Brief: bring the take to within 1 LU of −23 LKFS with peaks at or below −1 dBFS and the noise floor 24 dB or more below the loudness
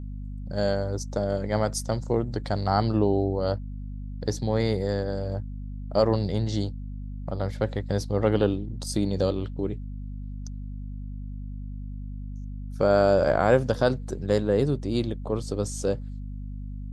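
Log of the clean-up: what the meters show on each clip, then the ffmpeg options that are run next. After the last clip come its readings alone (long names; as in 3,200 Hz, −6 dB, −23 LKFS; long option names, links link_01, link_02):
mains hum 50 Hz; hum harmonics up to 250 Hz; level of the hum −32 dBFS; integrated loudness −26.5 LKFS; sample peak −7.5 dBFS; target loudness −23.0 LKFS
→ -af "bandreject=frequency=50:width_type=h:width=4,bandreject=frequency=100:width_type=h:width=4,bandreject=frequency=150:width_type=h:width=4,bandreject=frequency=200:width_type=h:width=4,bandreject=frequency=250:width_type=h:width=4"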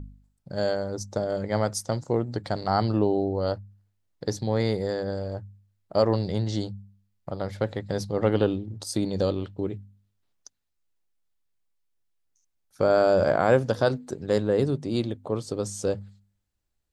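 mains hum none found; integrated loudness −26.5 LKFS; sample peak −8.0 dBFS; target loudness −23.0 LKFS
→ -af "volume=3.5dB"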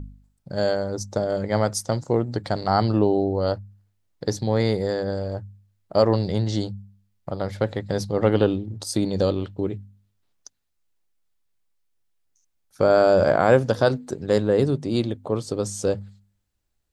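integrated loudness −23.0 LKFS; sample peak −4.5 dBFS; background noise floor −72 dBFS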